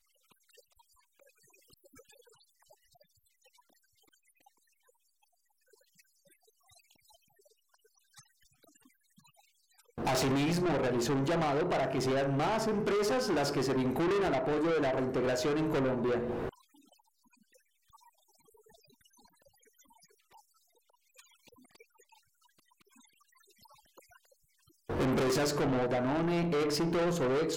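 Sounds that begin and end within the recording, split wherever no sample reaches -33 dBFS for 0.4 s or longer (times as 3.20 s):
9.98–16.49 s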